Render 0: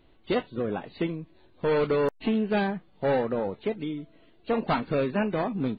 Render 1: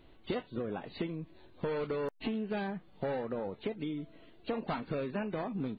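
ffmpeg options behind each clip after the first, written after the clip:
-af "acompressor=threshold=-34dB:ratio=6,volume=1dB"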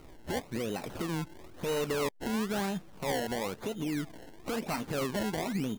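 -af "alimiter=level_in=8.5dB:limit=-24dB:level=0:latency=1:release=130,volume=-8.5dB,acrusher=samples=25:mix=1:aa=0.000001:lfo=1:lforange=25:lforate=1,volume=7.5dB"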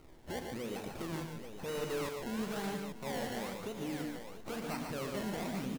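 -filter_complex "[0:a]asplit=2[a][b];[b]aeval=exprs='(mod(26.6*val(0)+1,2)-1)/26.6':c=same,volume=-11.5dB[c];[a][c]amix=inputs=2:normalize=0,aecho=1:1:46|114|144|689|834:0.266|0.398|0.501|0.211|0.376,volume=-8dB"

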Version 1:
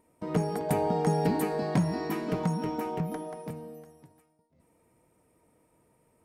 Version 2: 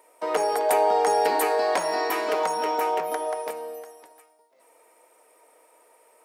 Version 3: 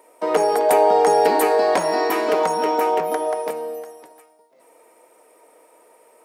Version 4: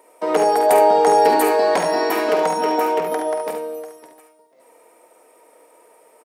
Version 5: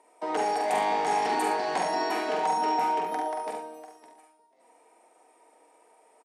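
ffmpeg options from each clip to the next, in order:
-filter_complex "[0:a]highpass=f=490:w=0.5412,highpass=f=490:w=1.3066,asplit=2[a][b];[b]alimiter=level_in=6.5dB:limit=-24dB:level=0:latency=1:release=94,volume=-6.5dB,volume=-1dB[c];[a][c]amix=inputs=2:normalize=0,volume=7.5dB"
-af "lowshelf=f=400:g=11,volume=2.5dB"
-af "aecho=1:1:48|71:0.355|0.422"
-filter_complex "[0:a]volume=14dB,asoftclip=hard,volume=-14dB,highpass=f=170:w=0.5412,highpass=f=170:w=1.3066,equalizer=f=520:t=q:w=4:g=-8,equalizer=f=780:t=q:w=4:g=7,equalizer=f=1.3k:t=q:w=4:g=-3,lowpass=f=9.7k:w=0.5412,lowpass=f=9.7k:w=1.3066,asplit=2[a][b];[b]adelay=44,volume=-6dB[c];[a][c]amix=inputs=2:normalize=0,volume=-8.5dB"

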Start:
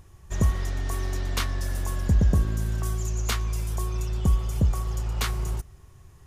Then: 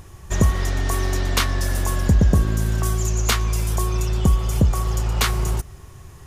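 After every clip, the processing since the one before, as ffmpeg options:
-filter_complex "[0:a]lowshelf=f=110:g=-4.5,asplit=2[a][b];[b]acompressor=threshold=-31dB:ratio=6,volume=1dB[c];[a][c]amix=inputs=2:normalize=0,volume=5dB"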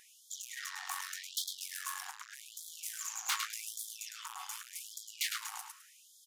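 -af "aecho=1:1:105|210|315:0.447|0.103|0.0236,asoftclip=type=tanh:threshold=-21dB,afftfilt=real='re*gte(b*sr/1024,710*pow(3200/710,0.5+0.5*sin(2*PI*0.85*pts/sr)))':imag='im*gte(b*sr/1024,710*pow(3200/710,0.5+0.5*sin(2*PI*0.85*pts/sr)))':win_size=1024:overlap=0.75,volume=-5.5dB"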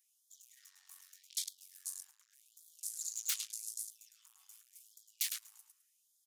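-af "aderivative,afwtdn=0.00447,acrusher=bits=8:mode=log:mix=0:aa=0.000001,volume=1.5dB"

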